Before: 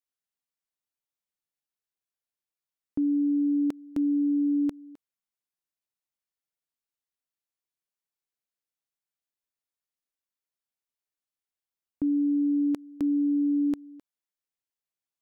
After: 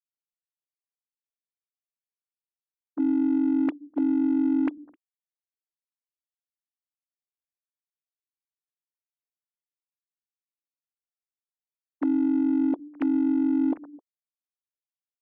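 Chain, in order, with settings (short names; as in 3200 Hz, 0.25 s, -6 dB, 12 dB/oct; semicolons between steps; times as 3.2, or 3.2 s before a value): sine-wave speech; expander -39 dBFS; in parallel at -3.5 dB: soft clip -33.5 dBFS, distortion -7 dB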